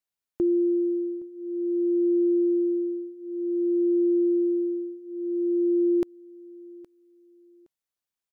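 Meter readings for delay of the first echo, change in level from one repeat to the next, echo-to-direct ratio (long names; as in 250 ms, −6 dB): 817 ms, −11.5 dB, −21.5 dB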